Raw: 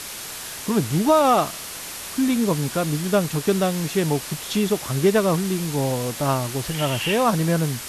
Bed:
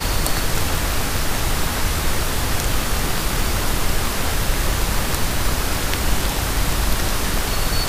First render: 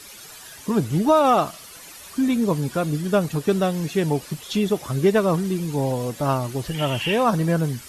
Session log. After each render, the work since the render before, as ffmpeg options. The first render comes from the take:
-af "afftdn=nr=12:nf=-34"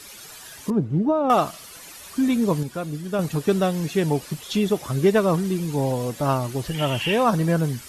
-filter_complex "[0:a]asettb=1/sr,asplit=3[a][b][c];[a]atrim=end=0.704[d];[b]atrim=start=0.7:end=1.3,asetpts=PTS-STARTPTS,afade=t=in:d=0.004:c=qsin,afade=t=out:st=0.596:d=0.004:c=qsin,bandpass=f=190:t=q:w=0.5[e];[c]atrim=start=1.296[f];[d][e]acrossfade=d=0.004:c1=hsin:c2=qsin[g];[g][f]acrossfade=d=0.004:c1=qsin:c2=hsin,asplit=3[h][i][j];[h]atrim=end=2.632[k];[i]atrim=start=2.628:end=3.192,asetpts=PTS-STARTPTS,volume=-6dB[l];[j]atrim=start=3.188[m];[k][l]acrossfade=d=0.004:c1=hsin:c2=hsin[n];[n][m]acrossfade=d=0.004:c1=hsin:c2=hsin"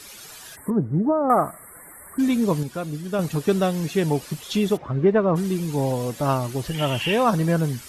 -filter_complex "[0:a]asplit=3[a][b][c];[a]afade=t=out:st=0.55:d=0.02[d];[b]asuperstop=centerf=4200:order=20:qfactor=0.73,afade=t=in:st=0.55:d=0.02,afade=t=out:st=2.18:d=0.02[e];[c]afade=t=in:st=2.18:d=0.02[f];[d][e][f]amix=inputs=3:normalize=0,asplit=3[g][h][i];[g]afade=t=out:st=4.76:d=0.02[j];[h]lowpass=1.6k,afade=t=in:st=4.76:d=0.02,afade=t=out:st=5.35:d=0.02[k];[i]afade=t=in:st=5.35:d=0.02[l];[j][k][l]amix=inputs=3:normalize=0"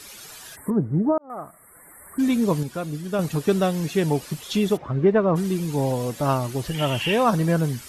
-filter_complex "[0:a]asplit=2[a][b];[a]atrim=end=1.18,asetpts=PTS-STARTPTS,afade=t=out:st=1.176:d=0.004:c=hsin[c];[b]atrim=start=1.18,asetpts=PTS-STARTPTS,afade=t=in:d=1.11[d];[c][d]concat=n=2:v=0:a=1"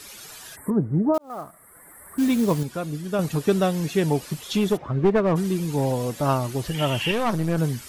-filter_complex "[0:a]asettb=1/sr,asplit=3[a][b][c];[a]atrim=end=1.144[d];[b]atrim=start=1.14:end=2.65,asetpts=PTS-STARTPTS,afade=t=in:d=0.004:c=qsin,afade=t=out:st=1.506:d=0.004:c=qsin,acrusher=bits=5:mode=log:mix=0:aa=0.000001[e];[c]atrim=start=2.646[f];[d][e]acrossfade=d=0.004:c1=hsin:c2=qsin[g];[g][f]acrossfade=d=0.004:c1=qsin:c2=hsin,asettb=1/sr,asplit=3[h][i][j];[h]atrim=end=4.574[k];[i]atrim=start=4.57:end=6.03,asetpts=PTS-STARTPTS,afade=t=in:d=0.004:c=qsin,afade=t=out:st=1.456:d=0.004:c=qsin,aeval=exprs='clip(val(0),-1,0.133)':c=same[l];[j]atrim=start=6.026[m];[k][l]acrossfade=d=0.004:c1=hsin:c2=qsin[n];[n][m]acrossfade=d=0.004:c1=qsin:c2=hsin,asettb=1/sr,asplit=3[o][p][q];[o]atrim=end=7.114[r];[p]atrim=start=7.11:end=7.58,asetpts=PTS-STARTPTS,afade=t=in:d=0.004:c=qsin,afade=t=out:st=0.466:d=0.004:c=qsin,aeval=exprs='(tanh(7.08*val(0)+0.65)-tanh(0.65))/7.08':c=same[s];[q]atrim=start=7.576[t];[r][s]acrossfade=d=0.004:c1=hsin:c2=qsin[u];[u][t]acrossfade=d=0.004:c1=qsin:c2=hsin"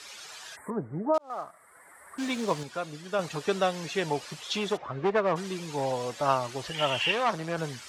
-filter_complex "[0:a]highpass=44,acrossover=split=500 7800:gain=0.2 1 0.0708[a][b][c];[a][b][c]amix=inputs=3:normalize=0"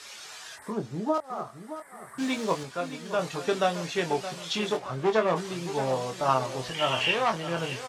-filter_complex "[0:a]asplit=2[a][b];[b]adelay=23,volume=-6dB[c];[a][c]amix=inputs=2:normalize=0,asplit=2[d][e];[e]aecho=0:1:620|1240|1860|2480:0.251|0.1|0.0402|0.0161[f];[d][f]amix=inputs=2:normalize=0"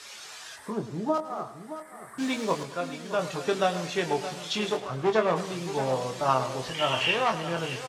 -af "aecho=1:1:106|212|318|424:0.2|0.0878|0.0386|0.017"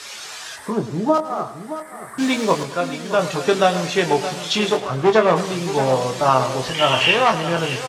-af "volume=9.5dB,alimiter=limit=-3dB:level=0:latency=1"

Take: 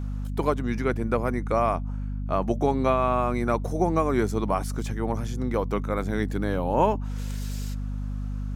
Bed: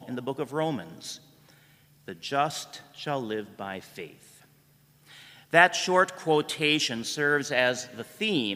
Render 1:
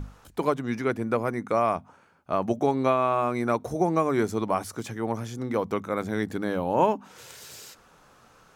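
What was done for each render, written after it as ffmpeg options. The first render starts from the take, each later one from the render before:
-af "bandreject=f=50:t=h:w=6,bandreject=f=100:t=h:w=6,bandreject=f=150:t=h:w=6,bandreject=f=200:t=h:w=6,bandreject=f=250:t=h:w=6"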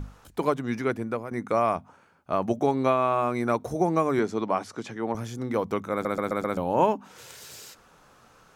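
-filter_complex "[0:a]asettb=1/sr,asplit=3[a][b][c];[a]atrim=end=4.194[d];[b]atrim=start=4.19:end=5.15,asetpts=PTS-STARTPTS,afade=t=in:d=0.004:c=qsin,afade=t=out:st=0.956:d=0.004:c=qsin,highpass=160,lowpass=5.6k[e];[c]atrim=start=5.146[f];[d][e]acrossfade=d=0.004:c1=hsin:c2=qsin[g];[g][f]acrossfade=d=0.004:c1=qsin:c2=hsin,asplit=7[h][i][j][k][l][m][n];[h]atrim=end=1.31,asetpts=PTS-STARTPTS,afade=t=out:st=0.76:d=0.55:c=qsin:silence=0.237137[o];[i]atrim=start=1.31:end=6.052,asetpts=PTS-STARTPTS,afade=t=in:d=0.004:c=hsin:silence=0.237137[p];[j]atrim=start=5.918:end=6.052[q];[k]atrim=start=5.918:end=6.052[r];[l]atrim=start=5.918:end=6.052[s];[m]atrim=start=5.918:end=6.052[t];[n]atrim=start=6.568[u];[o][p]concat=n=2:v=0:a=1[v];[v][q]acrossfade=d=0.004:c1=hsin:c2=hsin[w];[w][r]acrossfade=d=0.004:c1=hsin:c2=hsin[x];[x][s]acrossfade=d=0.004:c1=hsin:c2=hsin[y];[y][t]acrossfade=d=0.004:c1=hsin:c2=hsin[z];[z][u]acrossfade=d=0.004:c1=hsin:c2=hsin"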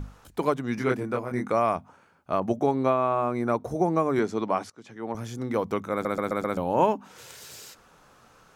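-filter_complex "[0:a]asettb=1/sr,asplit=3[a][b][c];[a]atrim=end=0.754[d];[b]atrim=start=0.75:end=1.5,asetpts=PTS-STARTPTS,afade=t=in:d=0.004:c=qsin,afade=t=out:st=0.746:d=0.004:c=qsin,asplit=2[e][f];[f]adelay=24,volume=-2dB[g];[e][g]amix=inputs=2:normalize=0,atrim=end_sample=33075[h];[c]atrim=start=1.496[i];[d][h]acrossfade=d=0.004:c1=hsin:c2=qsin[j];[j][i]acrossfade=d=0.004:c1=qsin:c2=hsin,asettb=1/sr,asplit=3[k][l][m];[k]atrim=end=2.404[n];[l]atrim=start=2.4:end=4.16,asetpts=PTS-STARTPTS,afade=t=in:d=0.004:c=qsin,afade=t=out:st=1.756:d=0.004:c=qsin,adynamicequalizer=threshold=0.0112:dfrequency=1600:dqfactor=0.7:tfrequency=1600:tqfactor=0.7:attack=5:release=100:ratio=0.375:range=4:mode=cutabove:tftype=highshelf[o];[m]atrim=start=4.156[p];[n][o]acrossfade=d=0.004:c1=hsin:c2=qsin[q];[q][p]acrossfade=d=0.004:c1=qsin:c2=hsin,asplit=2[r][s];[r]atrim=end=4.7,asetpts=PTS-STARTPTS,afade=t=out:st=4.696:d=0.004:c=hsin:silence=0.0841395[t];[s]atrim=start=4.7,asetpts=PTS-STARTPTS,afade=t=in:d=0.62:silence=0.0841395[u];[t][u]concat=n=2:v=0:a=1"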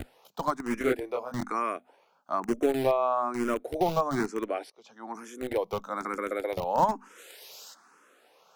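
-filter_complex "[0:a]acrossover=split=250|4800[a][b][c];[a]acrusher=bits=4:mix=0:aa=0.000001[d];[d][b][c]amix=inputs=3:normalize=0,asplit=2[e][f];[f]afreqshift=1.1[g];[e][g]amix=inputs=2:normalize=1"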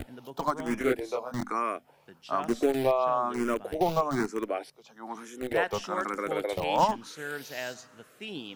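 -filter_complex "[1:a]volume=-12.5dB[a];[0:a][a]amix=inputs=2:normalize=0"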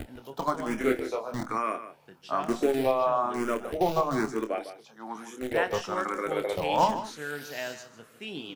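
-filter_complex "[0:a]asplit=2[a][b];[b]adelay=27,volume=-9.5dB[c];[a][c]amix=inputs=2:normalize=0,asplit=2[d][e];[e]adelay=151.6,volume=-12dB,highshelf=f=4k:g=-3.41[f];[d][f]amix=inputs=2:normalize=0"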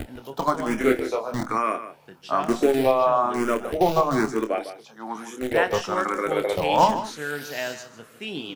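-af "volume=5.5dB"

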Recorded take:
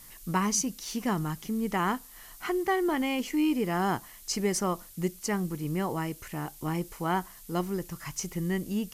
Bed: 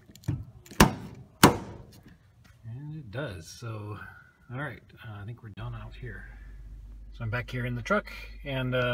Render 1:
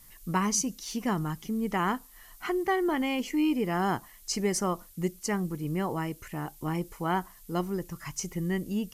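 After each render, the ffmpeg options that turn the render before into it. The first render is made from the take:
-af "afftdn=nr=6:nf=-50"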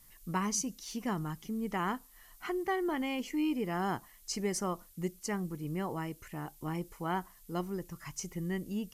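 -af "volume=-5.5dB"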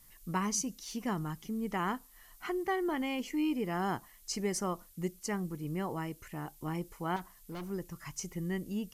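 -filter_complex "[0:a]asettb=1/sr,asplit=3[a][b][c];[a]atrim=end=7.164[d];[b]atrim=start=7.16:end=7.7,asetpts=PTS-STARTPTS,afade=t=in:d=0.004:c=qsin,afade=t=out:st=0.536:d=0.004:c=qsin,asoftclip=type=hard:threshold=-38dB[e];[c]atrim=start=7.696[f];[d][e]acrossfade=d=0.004:c1=hsin:c2=qsin[g];[g][f]acrossfade=d=0.004:c1=qsin:c2=hsin"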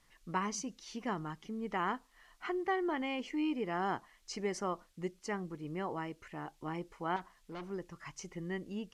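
-af "lowpass=6.3k,bass=f=250:g=-8,treble=f=4k:g=-6"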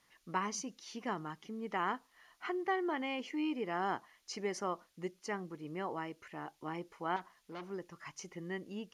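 -af "highpass=f=220:p=1,bandreject=f=7.9k:w=6.5"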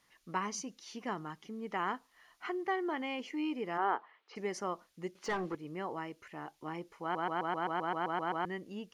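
-filter_complex "[0:a]asplit=3[a][b][c];[a]afade=t=out:st=3.77:d=0.02[d];[b]highpass=340,equalizer=f=440:t=q:w=4:g=9,equalizer=f=880:t=q:w=4:g=6,equalizer=f=1.3k:t=q:w=4:g=6,lowpass=f=3.2k:w=0.5412,lowpass=f=3.2k:w=1.3066,afade=t=in:st=3.77:d=0.02,afade=t=out:st=4.35:d=0.02[e];[c]afade=t=in:st=4.35:d=0.02[f];[d][e][f]amix=inputs=3:normalize=0,asettb=1/sr,asplit=3[g][h][i];[g]atrim=end=5.154[j];[h]atrim=start=5.15:end=5.55,asetpts=PTS-STARTPTS,afade=t=in:d=0.004:c=qsin,afade=t=out:st=0.396:d=0.004:c=qsin,asplit=2[k][l];[l]highpass=f=720:p=1,volume=23dB,asoftclip=type=tanh:threshold=-24dB[m];[k][m]amix=inputs=2:normalize=0,lowpass=f=1.5k:p=1,volume=-6dB[n];[i]atrim=start=5.546[o];[j][n]acrossfade=d=0.004:c1=hsin:c2=qsin[p];[p][o]acrossfade=d=0.004:c1=qsin:c2=hsin,asplit=12[q][r][s][t][u][v][w][x][y][z][aa][ab];[q]atrim=end=7.152[ac];[r]atrim=start=7.018:end=7.152[ad];[s]atrim=start=7.018:end=7.152[ae];[t]atrim=start=7.018:end=7.152[af];[u]atrim=start=7.018:end=7.152[ag];[v]atrim=start=7.018:end=7.152[ah];[w]atrim=start=7.018:end=7.152[ai];[x]atrim=start=7.018:end=7.152[aj];[y]atrim=start=7.018:end=7.152[ak];[z]atrim=start=7.018:end=7.152[al];[aa]atrim=start=7.018:end=7.152[am];[ab]atrim=start=8.448[an];[ac][ad]acrossfade=d=0.004:c1=hsin:c2=hsin[ao];[ao][ae]acrossfade=d=0.004:c1=hsin:c2=hsin[ap];[ap][af]acrossfade=d=0.004:c1=hsin:c2=hsin[aq];[aq][ag]acrossfade=d=0.004:c1=hsin:c2=hsin[ar];[ar][ah]acrossfade=d=0.004:c1=hsin:c2=hsin[as];[as][ai]acrossfade=d=0.004:c1=hsin:c2=hsin[at];[at][aj]acrossfade=d=0.004:c1=hsin:c2=hsin[au];[au][ak]acrossfade=d=0.004:c1=hsin:c2=hsin[av];[av][al]acrossfade=d=0.004:c1=hsin:c2=hsin[aw];[aw][am]acrossfade=d=0.004:c1=hsin:c2=hsin[ax];[ax][an]acrossfade=d=0.004:c1=hsin:c2=hsin"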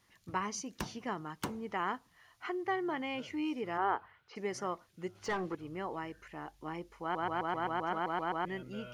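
-filter_complex "[1:a]volume=-21.5dB[a];[0:a][a]amix=inputs=2:normalize=0"

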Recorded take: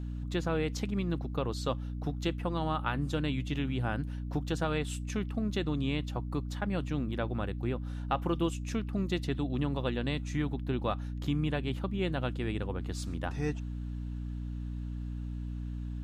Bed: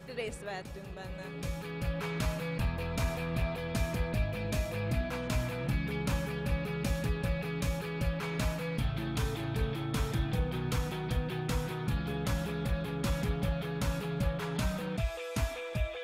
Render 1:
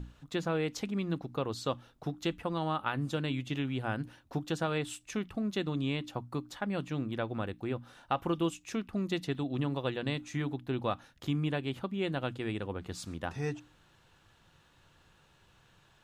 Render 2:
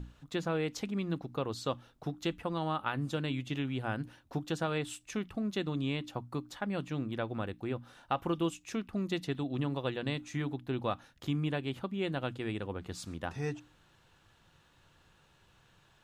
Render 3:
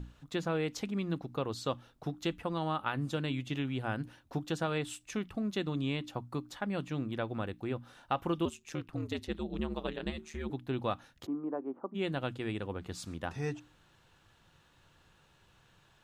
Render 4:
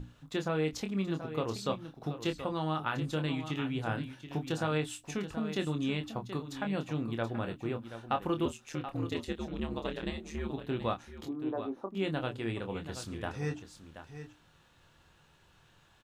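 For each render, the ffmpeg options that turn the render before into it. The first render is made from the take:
-af "bandreject=f=60:t=h:w=6,bandreject=f=120:t=h:w=6,bandreject=f=180:t=h:w=6,bandreject=f=240:t=h:w=6,bandreject=f=300:t=h:w=6"
-af "volume=-1dB"
-filter_complex "[0:a]asettb=1/sr,asplit=3[a][b][c];[a]atrim=end=8.454[d];[b]atrim=start=8.45:end=10.5,asetpts=PTS-STARTPTS,afade=t=in:d=0.004:c=qsin,afade=t=out:st=2.046:d=0.004:c=qsin,aeval=exprs='val(0)*sin(2*PI*77*n/s)':c=same[e];[c]atrim=start=10.496[f];[d][e]acrossfade=d=0.004:c1=hsin:c2=qsin[g];[g][f]acrossfade=d=0.004:c1=qsin:c2=hsin,asplit=3[h][i][j];[h]afade=t=out:st=11.25:d=0.02[k];[i]asuperpass=centerf=540:order=8:qfactor=0.56,afade=t=in:st=11.25:d=0.02,afade=t=out:st=11.94:d=0.02[l];[j]afade=t=in:st=11.94:d=0.02[m];[k][l][m]amix=inputs=3:normalize=0"
-filter_complex "[0:a]asplit=2[a][b];[b]adelay=26,volume=-7dB[c];[a][c]amix=inputs=2:normalize=0,aecho=1:1:729:0.282"

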